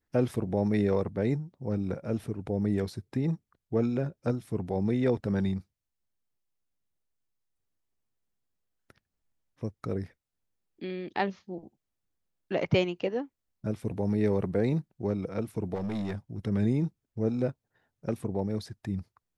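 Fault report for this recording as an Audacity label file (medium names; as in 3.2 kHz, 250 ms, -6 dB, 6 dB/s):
15.740000	16.480000	clipped -29 dBFS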